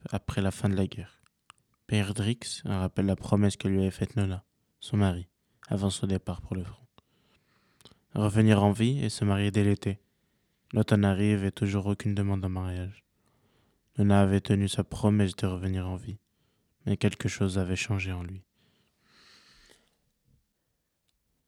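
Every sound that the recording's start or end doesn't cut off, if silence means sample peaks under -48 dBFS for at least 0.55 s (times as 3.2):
7.81–9.96
10.71–12.99
13.96–16.16
16.85–18.4
19.21–19.76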